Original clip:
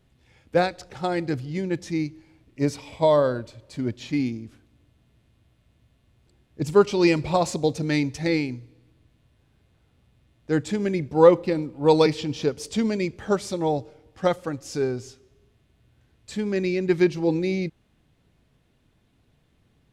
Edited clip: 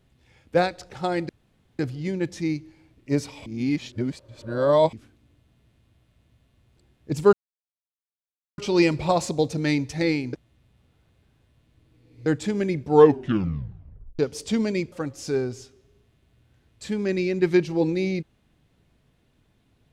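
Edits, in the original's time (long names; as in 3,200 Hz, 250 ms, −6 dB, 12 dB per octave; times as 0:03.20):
0:01.29: splice in room tone 0.50 s
0:02.96–0:04.43: reverse
0:06.83: splice in silence 1.25 s
0:08.58–0:10.51: reverse
0:11.13: tape stop 1.31 s
0:13.17–0:14.39: remove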